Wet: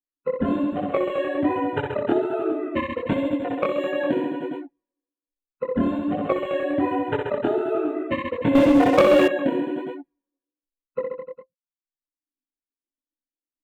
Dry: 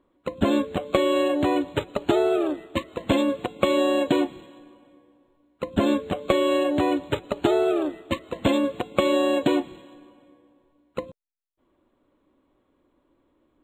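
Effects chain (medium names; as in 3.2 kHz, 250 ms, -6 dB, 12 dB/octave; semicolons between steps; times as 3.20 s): expander on every frequency bin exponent 2; reverb removal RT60 1 s; level-controlled noise filter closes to 2.5 kHz, open at -23 dBFS; ten-band graphic EQ 125 Hz +4 dB, 250 Hz +9 dB, 500 Hz +8 dB, 1 kHz +6 dB, 2 kHz +9 dB, 4 kHz -5 dB, 8 kHz -10 dB; reverse bouncing-ball echo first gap 60 ms, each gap 1.15×, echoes 5; compression 6:1, threshold -24 dBFS, peak gain reduction 15 dB; chorus voices 2, 1.2 Hz, delay 22 ms, depth 3.7 ms; 8.55–9.28 s: waveshaping leveller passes 3; trim +6.5 dB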